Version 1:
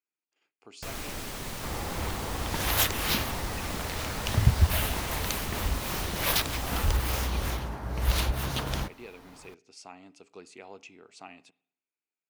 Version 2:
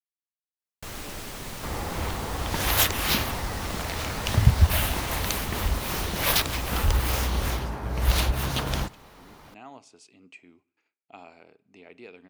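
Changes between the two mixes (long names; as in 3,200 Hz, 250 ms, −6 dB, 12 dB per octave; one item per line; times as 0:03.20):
speech: entry +3.00 s
second sound +3.5 dB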